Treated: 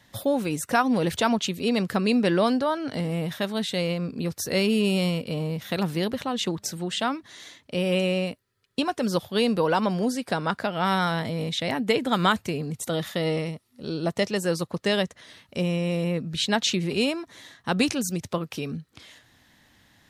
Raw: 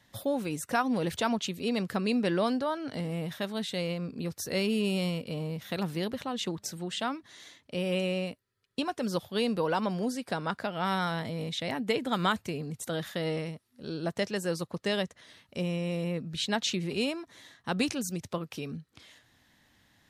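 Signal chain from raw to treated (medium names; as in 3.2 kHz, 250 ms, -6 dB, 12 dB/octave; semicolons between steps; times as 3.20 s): 12.77–14.42 s: band-stop 1.6 kHz, Q 7.7; trim +6 dB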